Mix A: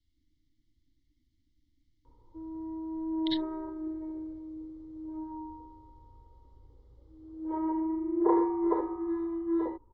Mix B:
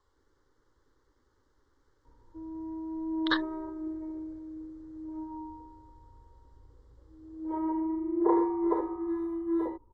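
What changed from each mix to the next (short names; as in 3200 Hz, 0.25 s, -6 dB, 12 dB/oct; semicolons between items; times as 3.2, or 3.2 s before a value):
speech: remove Chebyshev band-stop 310–2100 Hz, order 5; master: remove LPF 4600 Hz 12 dB/oct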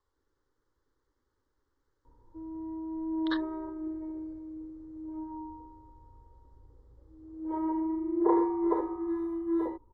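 speech -8.5 dB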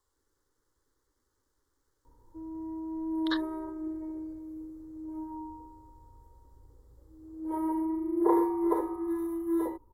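master: remove air absorption 150 m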